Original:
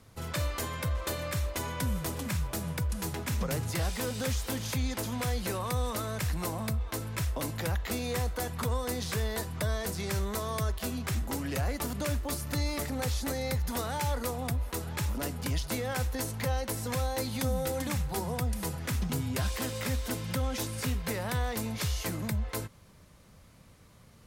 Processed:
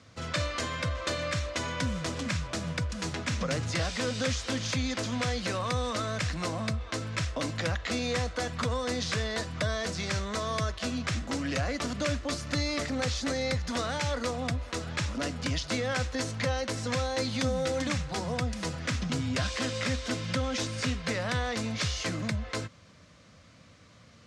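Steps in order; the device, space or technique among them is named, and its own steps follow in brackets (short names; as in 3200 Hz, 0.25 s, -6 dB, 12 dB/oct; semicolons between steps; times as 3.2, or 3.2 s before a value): car door speaker (speaker cabinet 110–6700 Hz, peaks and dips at 140 Hz -5 dB, 200 Hz -4 dB, 390 Hz -9 dB, 870 Hz -9 dB); gain +5.5 dB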